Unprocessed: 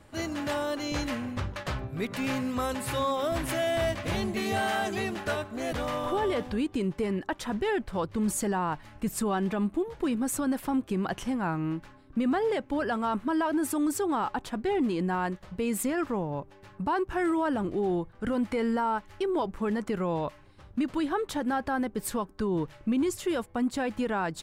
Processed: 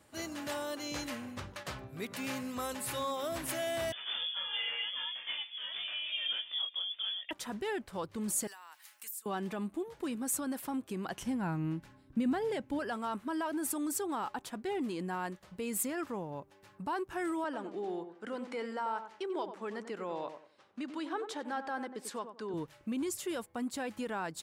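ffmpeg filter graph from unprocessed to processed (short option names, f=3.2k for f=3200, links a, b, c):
-filter_complex "[0:a]asettb=1/sr,asplit=3[a][b][c];[a]atrim=end=3.924[d];[b]atrim=start=3.92:end=7.31,asetpts=PTS-STARTPTS,afade=t=in:d=0.004:c=qsin,afade=t=out:st=3.386:d=0.004:c=qsin,flanger=delay=17.5:depth=6.1:speed=1.2,lowpass=f=3.1k:t=q:w=0.5098,lowpass=f=3.1k:t=q:w=0.6013,lowpass=f=3.1k:t=q:w=0.9,lowpass=f=3.1k:t=q:w=2.563,afreqshift=-3600[e];[c]atrim=start=7.306[f];[d][e]acrossfade=d=0.004:c1=hsin:c2=qsin[g];[g][f]acrossfade=d=0.004:c1=qsin:c2=hsin,asettb=1/sr,asplit=3[h][i][j];[h]atrim=end=8.474[k];[i]atrim=start=8.47:end=9.26,asetpts=PTS-STARTPTS,afade=t=in:d=0.004:c=qsin,afade=t=out:st=0.786:d=0.004:c=qsin,highpass=1.4k,aemphasis=mode=production:type=50fm,acompressor=threshold=-40dB:ratio=10:attack=3.2:release=140:knee=1:detection=peak[l];[j]atrim=start=9.256[m];[k][l]acrossfade=d=0.004:c1=hsin:c2=qsin[n];[n][m]acrossfade=d=0.004:c1=qsin:c2=hsin,asettb=1/sr,asplit=3[o][p][q];[o]atrim=end=11.204[r];[p]atrim=start=11.2:end=12.79,asetpts=PTS-STARTPTS,afade=t=in:d=0.004:c=qsin,afade=t=out:st=1.586:d=0.004:c=qsin,bass=f=250:g=10,treble=f=4k:g=-1,bandreject=f=1.2k:w=8.9[s];[q]atrim=start=12.786[t];[r][s]acrossfade=d=0.004:c1=hsin:c2=qsin[u];[u][t]acrossfade=d=0.004:c1=qsin:c2=hsin,asettb=1/sr,asplit=3[v][w][x];[v]atrim=end=17.444[y];[w]atrim=start=17.44:end=22.54,asetpts=PTS-STARTPTS,afade=t=in:d=0.004:c=qsin,afade=t=out:st=5.096:d=0.004:c=qsin,highpass=300,lowpass=6.1k,asplit=2[z][aa];[aa]adelay=93,lowpass=f=1.2k:p=1,volume=-8dB,asplit=2[ab][ac];[ac]adelay=93,lowpass=f=1.2k:p=1,volume=0.29,asplit=2[ad][ae];[ae]adelay=93,lowpass=f=1.2k:p=1,volume=0.29[af];[z][ab][ad][af]amix=inputs=4:normalize=0,atrim=end_sample=224910[ag];[x]atrim=start=22.536[ah];[y][ag]acrossfade=d=0.004:c1=hsin:c2=qsin[ai];[ai][ah]acrossfade=d=0.004:c1=qsin:c2=hsin,highpass=f=160:p=1,highshelf=f=5.2k:g=9.5,volume=-7.5dB"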